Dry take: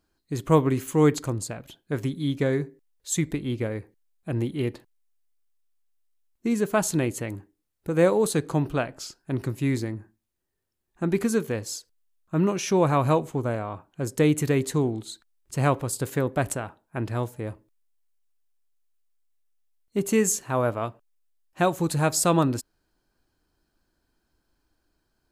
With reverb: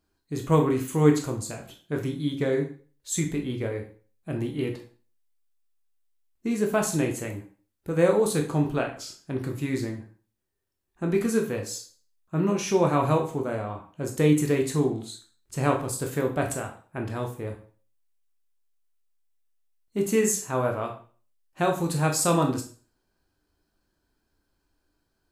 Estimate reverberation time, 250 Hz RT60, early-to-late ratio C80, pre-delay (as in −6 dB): 0.40 s, 0.35 s, 14.5 dB, 7 ms